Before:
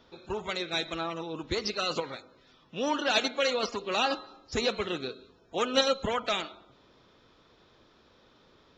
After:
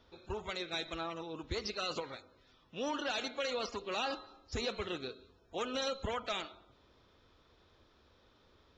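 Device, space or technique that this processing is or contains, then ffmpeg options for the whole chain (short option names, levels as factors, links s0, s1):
car stereo with a boomy subwoofer: -af "lowshelf=f=110:t=q:w=1.5:g=6.5,alimiter=limit=0.0891:level=0:latency=1:release=26,volume=0.501"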